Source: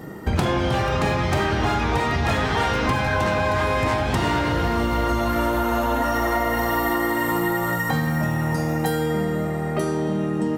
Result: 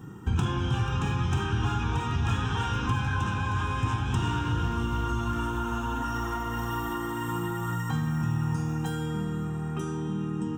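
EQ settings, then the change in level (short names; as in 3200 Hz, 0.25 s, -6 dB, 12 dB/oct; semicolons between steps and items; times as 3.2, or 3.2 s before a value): bell 110 Hz +8 dB 0.63 oct; notch 1200 Hz, Q 21; fixed phaser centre 3000 Hz, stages 8; -6.0 dB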